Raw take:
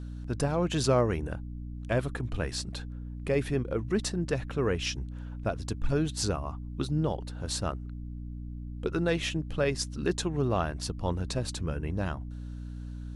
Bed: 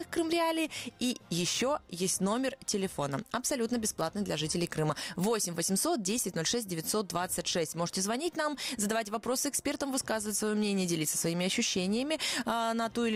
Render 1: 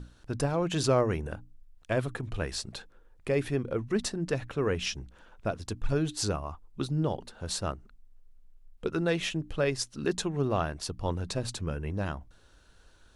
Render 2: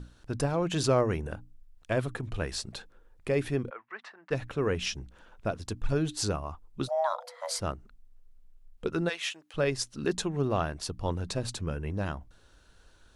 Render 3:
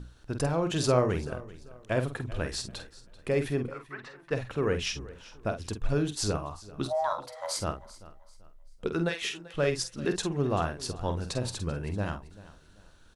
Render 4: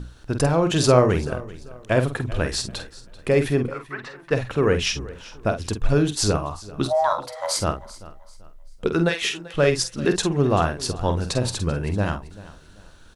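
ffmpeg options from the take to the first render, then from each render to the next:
ffmpeg -i in.wav -af "bandreject=frequency=60:width_type=h:width=6,bandreject=frequency=120:width_type=h:width=6,bandreject=frequency=180:width_type=h:width=6,bandreject=frequency=240:width_type=h:width=6,bandreject=frequency=300:width_type=h:width=6" out.wav
ffmpeg -i in.wav -filter_complex "[0:a]asplit=3[link_01][link_02][link_03];[link_01]afade=type=out:start_time=3.69:duration=0.02[link_04];[link_02]asuperpass=centerf=1400:order=4:qfactor=1,afade=type=in:start_time=3.69:duration=0.02,afade=type=out:start_time=4.3:duration=0.02[link_05];[link_03]afade=type=in:start_time=4.3:duration=0.02[link_06];[link_04][link_05][link_06]amix=inputs=3:normalize=0,asplit=3[link_07][link_08][link_09];[link_07]afade=type=out:start_time=6.87:duration=0.02[link_10];[link_08]afreqshift=480,afade=type=in:start_time=6.87:duration=0.02,afade=type=out:start_time=7.59:duration=0.02[link_11];[link_09]afade=type=in:start_time=7.59:duration=0.02[link_12];[link_10][link_11][link_12]amix=inputs=3:normalize=0,asplit=3[link_13][link_14][link_15];[link_13]afade=type=out:start_time=9.08:duration=0.02[link_16];[link_14]highpass=970,afade=type=in:start_time=9.08:duration=0.02,afade=type=out:start_time=9.54:duration=0.02[link_17];[link_15]afade=type=in:start_time=9.54:duration=0.02[link_18];[link_16][link_17][link_18]amix=inputs=3:normalize=0" out.wav
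ffmpeg -i in.wav -filter_complex "[0:a]asplit=2[link_01][link_02];[link_02]adelay=48,volume=-8.5dB[link_03];[link_01][link_03]amix=inputs=2:normalize=0,aecho=1:1:388|776|1164:0.112|0.0359|0.0115" out.wav
ffmpeg -i in.wav -af "volume=8.5dB" out.wav

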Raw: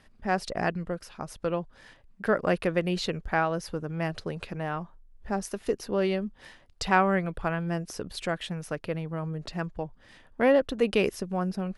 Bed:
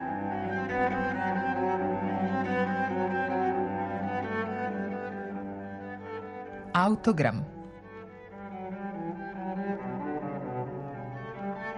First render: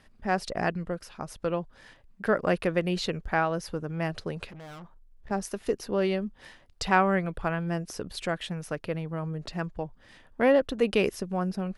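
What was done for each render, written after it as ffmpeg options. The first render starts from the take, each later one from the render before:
ffmpeg -i in.wav -filter_complex "[0:a]asettb=1/sr,asplit=3[link_01][link_02][link_03];[link_01]atrim=end=4.494[link_04];[link_02]atrim=start=4.49:end=5.31,asetpts=PTS-STARTPTS,afade=type=in:duration=0.004:curve=qsin,afade=type=out:start_time=0.816:duration=0.004:curve=qsin,aeval=exprs='(tanh(126*val(0)+0.35)-tanh(0.35))/126':channel_layout=same[link_05];[link_03]atrim=start=5.306[link_06];[link_04][link_05]acrossfade=duration=0.004:curve1=hsin:curve2=qsin[link_07];[link_07][link_06]acrossfade=duration=0.004:curve1=qsin:curve2=hsin" out.wav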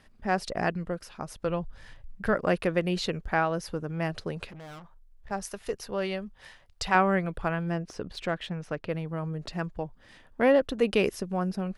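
ffmpeg -i in.wav -filter_complex "[0:a]asplit=3[link_01][link_02][link_03];[link_01]afade=type=out:start_time=1.47:duration=0.02[link_04];[link_02]asubboost=boost=8.5:cutoff=120,afade=type=in:start_time=1.47:duration=0.02,afade=type=out:start_time=2.34:duration=0.02[link_05];[link_03]afade=type=in:start_time=2.34:duration=0.02[link_06];[link_04][link_05][link_06]amix=inputs=3:normalize=0,asettb=1/sr,asplit=3[link_07][link_08][link_09];[link_07]atrim=end=4.794[link_10];[link_08]atrim=start=4.79:end=6.95,asetpts=PTS-STARTPTS,afade=type=in:duration=0.004:curve=qsin,afade=type=out:start_time=2.156:duration=0.004:curve=qsin,equalizer=frequency=280:width_type=o:width=1.1:gain=-11[link_11];[link_09]atrim=start=6.946[link_12];[link_10][link_11]acrossfade=duration=0.004:curve1=hsin:curve2=qsin[link_13];[link_13][link_12]acrossfade=duration=0.004:curve1=qsin:curve2=hsin,asettb=1/sr,asplit=3[link_14][link_15][link_16];[link_14]atrim=end=7.724[link_17];[link_15]atrim=start=7.72:end=8.89,asetpts=PTS-STARTPTS,afade=type=in:duration=0.004:curve=qsin,afade=type=out:start_time=1.166:duration=0.004:curve=qsin,adynamicsmooth=sensitivity=3:basefreq=4800[link_18];[link_16]atrim=start=8.886[link_19];[link_17][link_18]acrossfade=duration=0.004:curve1=hsin:curve2=qsin[link_20];[link_20][link_19]acrossfade=duration=0.004:curve1=qsin:curve2=hsin" out.wav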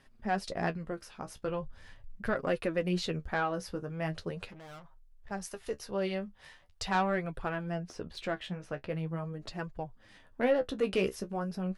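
ffmpeg -i in.wav -af "asoftclip=type=tanh:threshold=-15.5dB,flanger=delay=7.1:depth=9.3:regen=36:speed=0.41:shape=triangular" out.wav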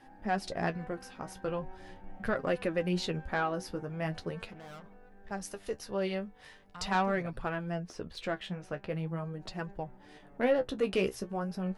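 ffmpeg -i in.wav -i bed.wav -filter_complex "[1:a]volume=-23dB[link_01];[0:a][link_01]amix=inputs=2:normalize=0" out.wav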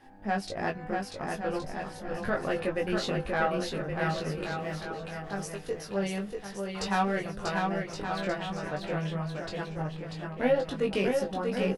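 ffmpeg -i in.wav -filter_complex "[0:a]asplit=2[link_01][link_02];[link_02]adelay=20,volume=-3dB[link_03];[link_01][link_03]amix=inputs=2:normalize=0,aecho=1:1:640|1120|1480|1750|1952:0.631|0.398|0.251|0.158|0.1" out.wav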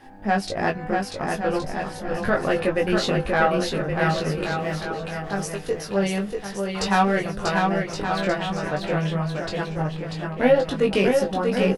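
ffmpeg -i in.wav -af "volume=8dB" out.wav

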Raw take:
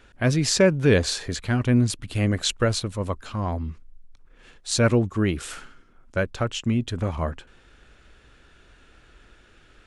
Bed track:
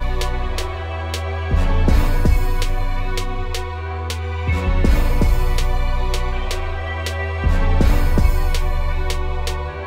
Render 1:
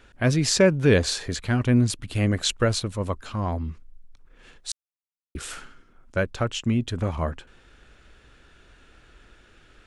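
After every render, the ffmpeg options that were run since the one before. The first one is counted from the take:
ffmpeg -i in.wav -filter_complex "[0:a]asplit=3[link_01][link_02][link_03];[link_01]atrim=end=4.72,asetpts=PTS-STARTPTS,afade=type=out:start_time=4.716:duration=0.004:curve=hsin[link_04];[link_02]atrim=start=4.72:end=5.35,asetpts=PTS-STARTPTS,volume=0[link_05];[link_03]atrim=start=5.35,asetpts=PTS-STARTPTS,afade=type=in:duration=0.004:curve=hsin[link_06];[link_04][link_05][link_06]concat=n=3:v=0:a=1" out.wav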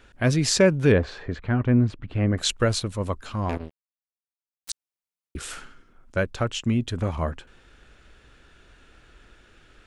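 ffmpeg -i in.wav -filter_complex "[0:a]asettb=1/sr,asplit=3[link_01][link_02][link_03];[link_01]atrim=end=0.924[link_04];[link_02]atrim=start=0.92:end=2.38,asetpts=PTS-STARTPTS,afade=type=in:duration=0.004:curve=qsin,afade=type=out:start_time=1.456:duration=0.004:curve=qsin,lowpass=1800[link_05];[link_03]atrim=start=2.376[link_06];[link_04][link_05]acrossfade=duration=0.004:curve1=hsin:curve2=qsin[link_07];[link_07][link_06]acrossfade=duration=0.004:curve1=qsin:curve2=hsin,asettb=1/sr,asplit=3[link_08][link_09][link_10];[link_08]atrim=end=3.494[link_11];[link_09]atrim=start=3.49:end=4.7,asetpts=PTS-STARTPTS,afade=type=in:duration=0.004:curve=qsin,afade=type=out:start_time=1.206:duration=0.004:curve=qsin,acrusher=bits=3:mix=0:aa=0.5[link_12];[link_10]atrim=start=4.696[link_13];[link_11][link_12]acrossfade=duration=0.004:curve1=hsin:curve2=qsin[link_14];[link_14][link_13]acrossfade=duration=0.004:curve1=qsin:curve2=hsin" out.wav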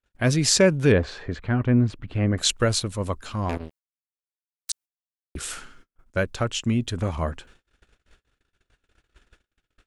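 ffmpeg -i in.wav -af "agate=range=-39dB:threshold=-49dB:ratio=16:detection=peak,highshelf=frequency=4900:gain=6" out.wav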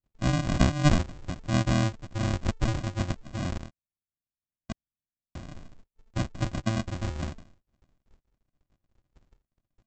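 ffmpeg -i in.wav -af "flanger=delay=2.2:depth=7.9:regen=38:speed=0.85:shape=sinusoidal,aresample=16000,acrusher=samples=36:mix=1:aa=0.000001,aresample=44100" out.wav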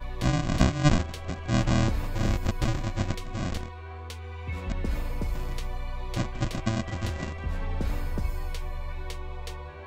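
ffmpeg -i in.wav -i bed.wav -filter_complex "[1:a]volume=-14.5dB[link_01];[0:a][link_01]amix=inputs=2:normalize=0" out.wav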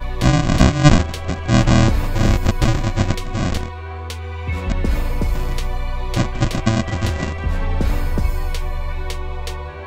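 ffmpeg -i in.wav -af "volume=10.5dB,alimiter=limit=-1dB:level=0:latency=1" out.wav

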